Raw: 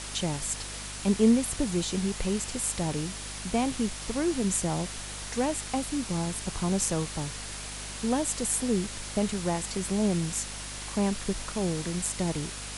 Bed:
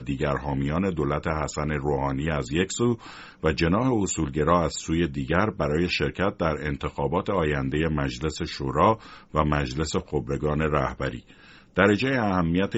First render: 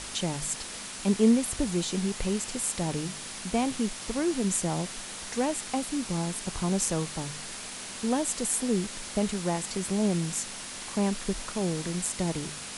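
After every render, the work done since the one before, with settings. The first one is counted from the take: de-hum 50 Hz, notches 3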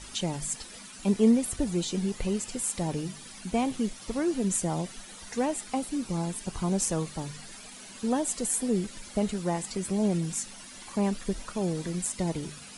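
denoiser 12 dB, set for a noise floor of -40 dBFS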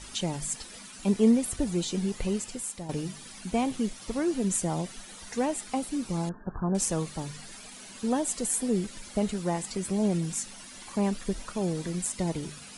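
2.34–2.89 fade out, to -11 dB; 6.29–6.75 brick-wall FIR low-pass 1800 Hz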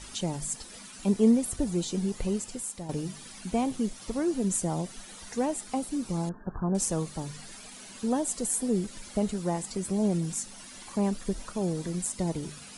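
dynamic EQ 2400 Hz, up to -5 dB, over -48 dBFS, Q 0.76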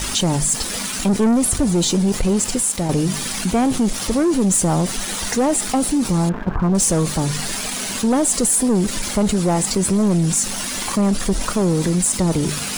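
sample leveller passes 3; fast leveller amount 50%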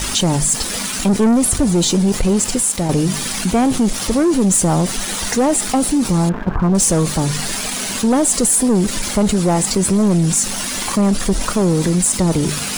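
gain +2.5 dB

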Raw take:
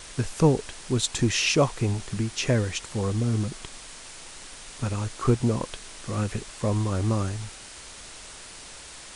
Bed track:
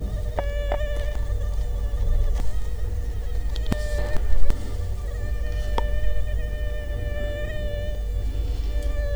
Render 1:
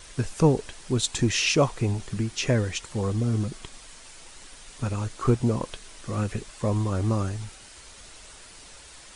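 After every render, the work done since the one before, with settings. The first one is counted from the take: denoiser 6 dB, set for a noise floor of -44 dBFS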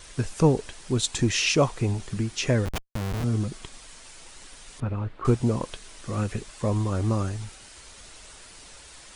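2.65–3.24 Schmitt trigger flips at -25.5 dBFS; 4.8–5.25 air absorption 480 m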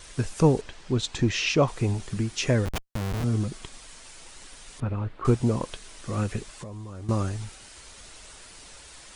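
0.61–1.68 air absorption 100 m; 6.57–7.09 compressor 12:1, threshold -35 dBFS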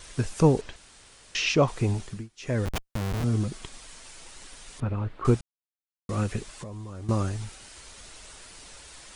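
0.76–1.35 room tone; 1.98–2.68 dip -23.5 dB, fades 0.31 s; 5.41–6.09 mute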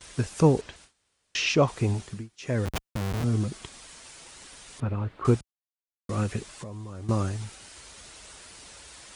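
gate with hold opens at -38 dBFS; HPF 48 Hz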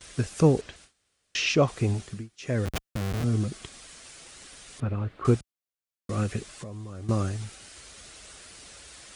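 bell 930 Hz -7 dB 0.26 oct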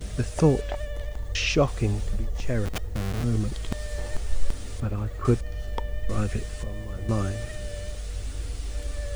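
add bed track -6.5 dB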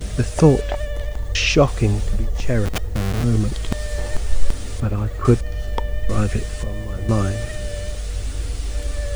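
gain +7 dB

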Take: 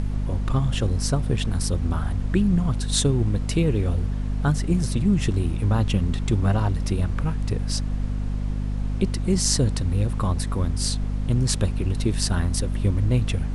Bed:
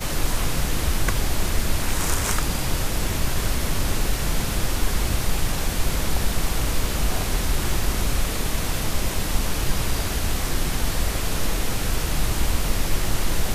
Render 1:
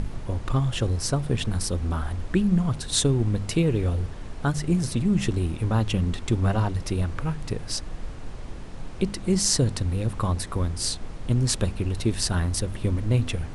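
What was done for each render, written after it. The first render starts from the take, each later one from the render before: de-hum 50 Hz, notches 5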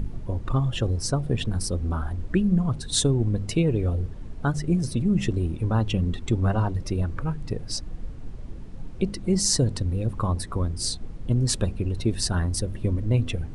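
denoiser 11 dB, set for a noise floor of -37 dBFS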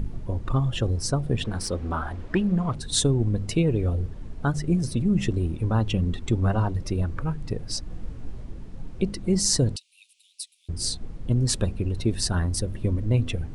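1.44–2.75 overdrive pedal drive 13 dB, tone 2700 Hz, clips at -11.5 dBFS; 7.88–8.44 doubler 18 ms -4 dB; 9.76–10.69 steep high-pass 2500 Hz 72 dB/oct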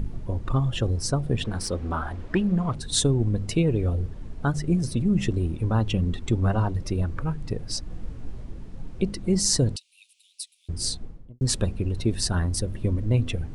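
10.89–11.41 studio fade out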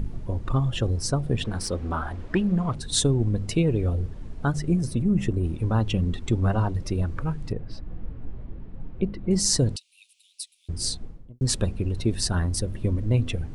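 4.7–5.43 bell 4400 Hz -2.5 dB -> -10.5 dB 1.6 oct; 7.52–9.31 air absorption 400 m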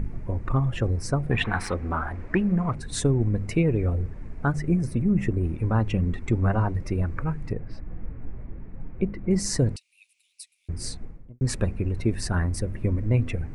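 1.31–1.74 spectral gain 680–4200 Hz +11 dB; resonant high shelf 2700 Hz -6 dB, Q 3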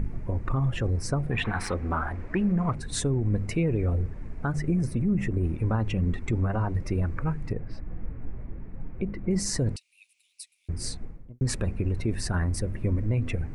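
limiter -17.5 dBFS, peak gain reduction 8.5 dB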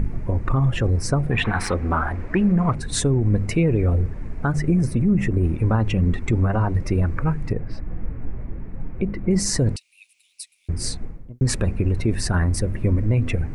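gain +6.5 dB

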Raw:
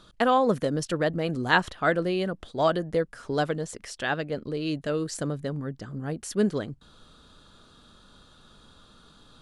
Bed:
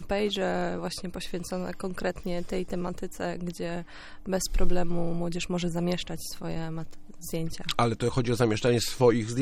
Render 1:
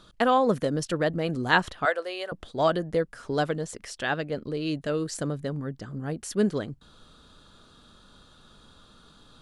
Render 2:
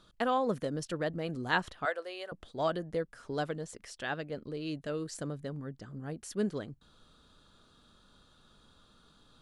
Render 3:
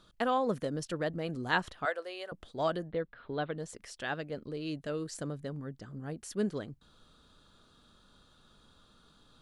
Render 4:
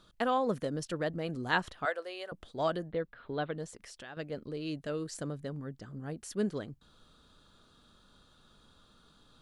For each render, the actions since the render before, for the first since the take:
1.85–2.32 HPF 510 Hz 24 dB/oct
gain -8 dB
2.88–3.58 elliptic low-pass 3900 Hz
3.67–4.17 compressor 3:1, threshold -46 dBFS

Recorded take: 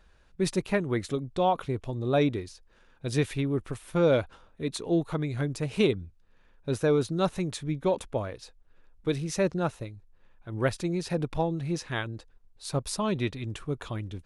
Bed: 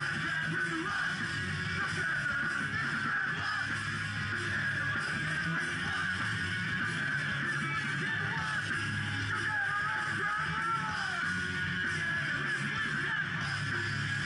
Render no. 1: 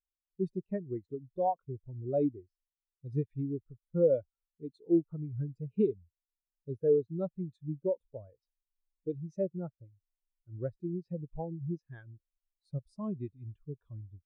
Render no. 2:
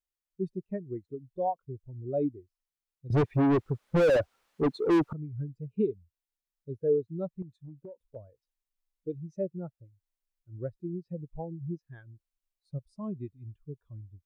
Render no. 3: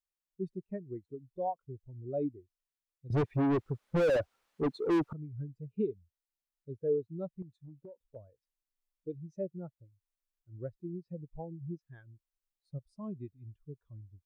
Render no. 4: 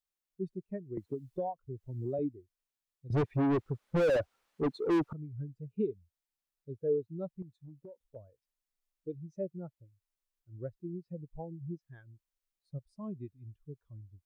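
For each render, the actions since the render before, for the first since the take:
compressor 1.5:1, threshold -34 dBFS, peak gain reduction 6 dB; spectral expander 2.5:1
3.1–5.13 overdrive pedal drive 41 dB, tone 1100 Hz, clips at -15.5 dBFS; 7.42–8.16 compressor 16:1, threshold -41 dBFS
gain -4.5 dB
0.97–2.19 three-band squash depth 100%

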